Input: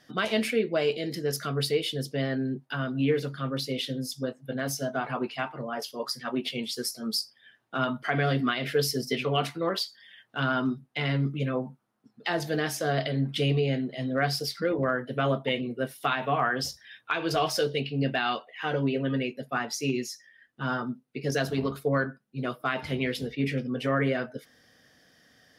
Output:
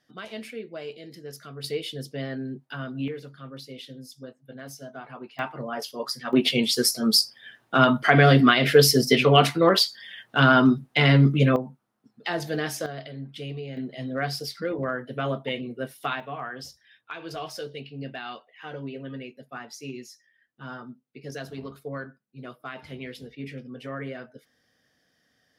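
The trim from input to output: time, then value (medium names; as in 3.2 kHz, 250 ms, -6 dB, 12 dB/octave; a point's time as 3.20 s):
-11 dB
from 1.64 s -3.5 dB
from 3.08 s -10 dB
from 5.39 s +1.5 dB
from 6.33 s +10 dB
from 11.56 s 0 dB
from 12.86 s -10 dB
from 13.77 s -2 dB
from 16.20 s -9 dB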